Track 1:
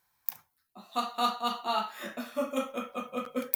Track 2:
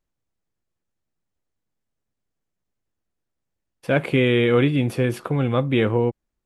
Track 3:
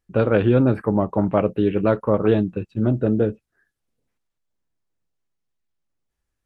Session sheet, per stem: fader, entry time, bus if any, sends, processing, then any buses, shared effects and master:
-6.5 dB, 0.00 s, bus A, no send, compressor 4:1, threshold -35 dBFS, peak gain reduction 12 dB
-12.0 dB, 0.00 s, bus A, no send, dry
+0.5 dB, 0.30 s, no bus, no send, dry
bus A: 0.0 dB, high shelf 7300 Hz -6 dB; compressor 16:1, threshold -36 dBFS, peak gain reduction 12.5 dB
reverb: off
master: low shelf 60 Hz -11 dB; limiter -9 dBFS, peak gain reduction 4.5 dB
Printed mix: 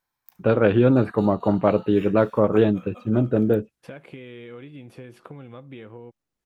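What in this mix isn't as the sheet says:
stem 2 -12.0 dB -> -5.5 dB; master: missing limiter -9 dBFS, peak gain reduction 4.5 dB

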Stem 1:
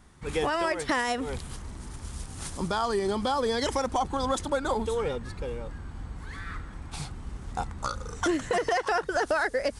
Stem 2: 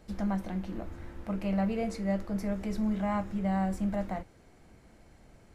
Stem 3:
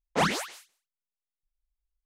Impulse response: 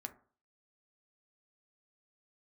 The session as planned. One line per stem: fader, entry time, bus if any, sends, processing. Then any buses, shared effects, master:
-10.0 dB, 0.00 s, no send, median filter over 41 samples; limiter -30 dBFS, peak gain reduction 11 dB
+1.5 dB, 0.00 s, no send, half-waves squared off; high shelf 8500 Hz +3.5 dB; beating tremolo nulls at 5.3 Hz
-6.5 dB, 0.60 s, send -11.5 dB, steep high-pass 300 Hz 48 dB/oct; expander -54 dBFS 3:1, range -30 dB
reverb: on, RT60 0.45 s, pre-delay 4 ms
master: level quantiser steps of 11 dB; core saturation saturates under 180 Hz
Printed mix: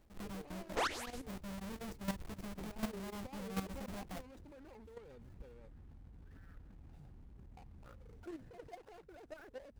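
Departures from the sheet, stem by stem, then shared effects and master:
stem 2 +1.5 dB -> -9.0 dB; master: missing core saturation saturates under 180 Hz

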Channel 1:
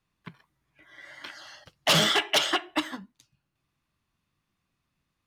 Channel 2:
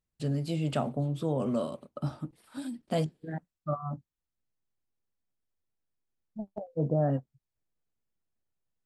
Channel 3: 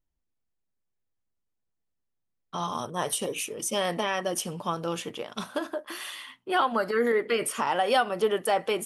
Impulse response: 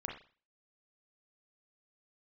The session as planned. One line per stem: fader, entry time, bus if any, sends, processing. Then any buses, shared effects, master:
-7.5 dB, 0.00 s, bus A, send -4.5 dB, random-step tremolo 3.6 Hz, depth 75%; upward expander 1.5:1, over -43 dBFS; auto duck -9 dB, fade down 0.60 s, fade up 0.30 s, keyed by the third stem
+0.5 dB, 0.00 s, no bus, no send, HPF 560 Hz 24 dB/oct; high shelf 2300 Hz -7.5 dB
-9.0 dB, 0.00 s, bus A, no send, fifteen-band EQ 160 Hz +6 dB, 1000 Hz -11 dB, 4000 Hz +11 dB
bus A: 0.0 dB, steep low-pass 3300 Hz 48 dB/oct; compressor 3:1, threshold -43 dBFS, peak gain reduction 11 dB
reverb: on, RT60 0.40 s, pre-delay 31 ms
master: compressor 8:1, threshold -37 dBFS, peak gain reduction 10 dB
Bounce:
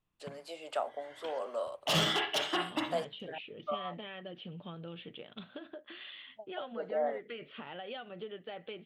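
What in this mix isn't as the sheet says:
stem 1 -7.5 dB -> +2.5 dB; master: missing compressor 8:1, threshold -37 dBFS, peak gain reduction 10 dB

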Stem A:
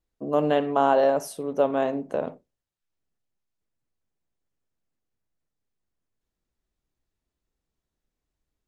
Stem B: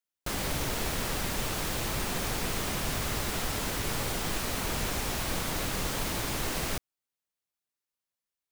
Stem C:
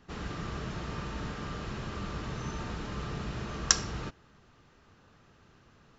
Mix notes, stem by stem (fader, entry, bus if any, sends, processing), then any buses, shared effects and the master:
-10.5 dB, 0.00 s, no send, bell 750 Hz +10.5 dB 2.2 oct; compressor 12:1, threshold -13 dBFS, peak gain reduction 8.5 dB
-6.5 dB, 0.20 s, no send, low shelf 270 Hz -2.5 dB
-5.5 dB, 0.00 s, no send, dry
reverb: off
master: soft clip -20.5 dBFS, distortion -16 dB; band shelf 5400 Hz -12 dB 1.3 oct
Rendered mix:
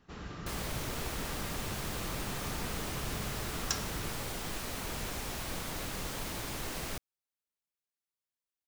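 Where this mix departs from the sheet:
stem A: muted; stem B: missing low shelf 270 Hz -2.5 dB; master: missing band shelf 5400 Hz -12 dB 1.3 oct

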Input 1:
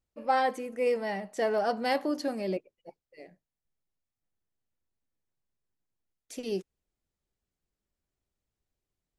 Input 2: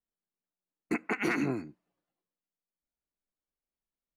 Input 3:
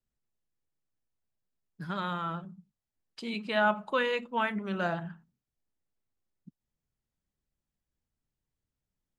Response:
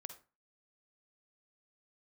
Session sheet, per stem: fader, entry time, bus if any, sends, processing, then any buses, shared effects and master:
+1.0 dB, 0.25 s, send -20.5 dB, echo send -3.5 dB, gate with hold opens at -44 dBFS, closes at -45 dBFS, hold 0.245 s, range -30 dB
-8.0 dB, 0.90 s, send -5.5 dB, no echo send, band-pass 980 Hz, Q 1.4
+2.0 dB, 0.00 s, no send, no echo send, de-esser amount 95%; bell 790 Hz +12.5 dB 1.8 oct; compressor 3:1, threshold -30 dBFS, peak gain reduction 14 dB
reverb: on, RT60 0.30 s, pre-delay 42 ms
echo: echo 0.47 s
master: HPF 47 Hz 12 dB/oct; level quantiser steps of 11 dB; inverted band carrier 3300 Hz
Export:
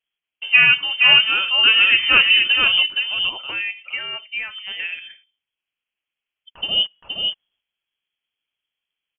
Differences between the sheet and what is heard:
stem 1 +1.0 dB -> +12.5 dB; master: missing level quantiser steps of 11 dB

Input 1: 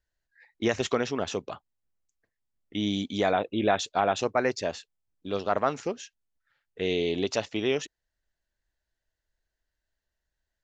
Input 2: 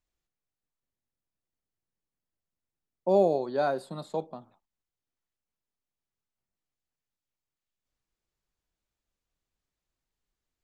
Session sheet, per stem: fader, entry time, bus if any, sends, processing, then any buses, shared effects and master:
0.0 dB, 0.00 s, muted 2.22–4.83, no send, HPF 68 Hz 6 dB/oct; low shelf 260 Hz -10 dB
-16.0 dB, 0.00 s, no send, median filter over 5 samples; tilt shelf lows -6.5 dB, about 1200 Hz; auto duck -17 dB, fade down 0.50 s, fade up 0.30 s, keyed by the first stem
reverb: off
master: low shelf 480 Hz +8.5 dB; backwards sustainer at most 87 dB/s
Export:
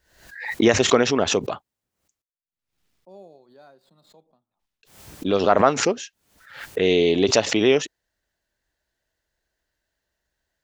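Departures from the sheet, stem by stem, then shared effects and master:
stem 1 0.0 dB -> +7.5 dB; stem 2 -16.0 dB -> -23.0 dB

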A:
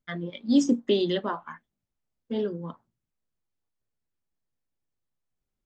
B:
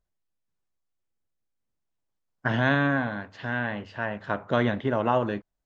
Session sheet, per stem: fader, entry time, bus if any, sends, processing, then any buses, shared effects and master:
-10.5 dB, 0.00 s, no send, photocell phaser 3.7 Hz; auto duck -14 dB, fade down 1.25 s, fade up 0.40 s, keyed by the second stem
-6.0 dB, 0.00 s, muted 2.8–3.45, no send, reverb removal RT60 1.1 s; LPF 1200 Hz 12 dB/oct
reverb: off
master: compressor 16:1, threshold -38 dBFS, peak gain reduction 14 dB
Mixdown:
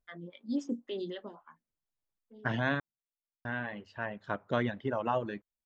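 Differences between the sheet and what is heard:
stem B: missing LPF 1200 Hz 12 dB/oct; master: missing compressor 16:1, threshold -38 dBFS, peak gain reduction 14 dB

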